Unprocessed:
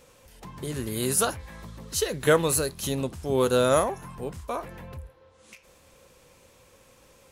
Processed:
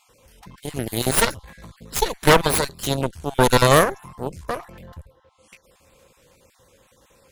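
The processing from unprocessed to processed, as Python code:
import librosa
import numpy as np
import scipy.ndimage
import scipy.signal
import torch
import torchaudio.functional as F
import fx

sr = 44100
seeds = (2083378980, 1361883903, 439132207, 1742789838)

y = fx.spec_dropout(x, sr, seeds[0], share_pct=25)
y = fx.cheby_harmonics(y, sr, harmonics=(6, 7), levels_db=(-7, -30), full_scale_db=-7.0)
y = F.gain(torch.from_numpy(y), 3.0).numpy()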